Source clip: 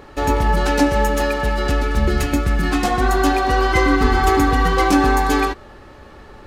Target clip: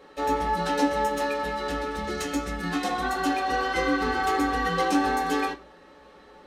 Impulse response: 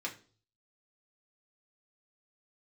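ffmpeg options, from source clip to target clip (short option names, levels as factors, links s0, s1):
-filter_complex "[0:a]asettb=1/sr,asplit=3[s0][s1][s2];[s0]atrim=end=2.044[s3];[s1]atrim=start=2.04:end=2.51,asetpts=PTS-STARTPTS,afade=t=in:d=0.004:c=qsin,afade=t=out:st=0.466:d=0.004:c=qsin,equalizer=f=6600:w=1.5:g=6[s4];[s2]atrim=start=2.506[s5];[s3][s4]acrossfade=d=0.004:c1=hsin:c2=qsin[s6];[s6][s5]acrossfade=d=0.004:c1=qsin:c2=hsin[s7];[1:a]atrim=start_sample=2205,asetrate=70560,aresample=44100[s8];[s7][s8]afir=irnorm=-1:irlink=0,volume=0.562"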